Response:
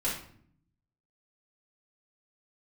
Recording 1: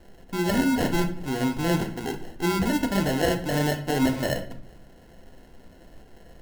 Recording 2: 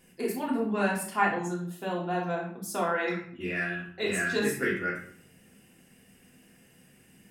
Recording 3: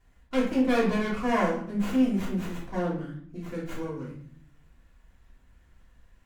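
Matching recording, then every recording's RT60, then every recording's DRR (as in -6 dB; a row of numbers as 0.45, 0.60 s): 3; 0.60, 0.60, 0.60 s; 5.0, -4.0, -8.5 dB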